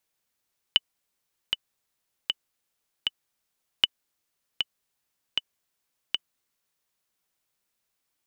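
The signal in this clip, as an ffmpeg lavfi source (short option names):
-f lavfi -i "aevalsrc='pow(10,(-4.5-6.5*gte(mod(t,4*60/78),60/78))/20)*sin(2*PI*2980*mod(t,60/78))*exp(-6.91*mod(t,60/78)/0.03)':d=6.15:s=44100"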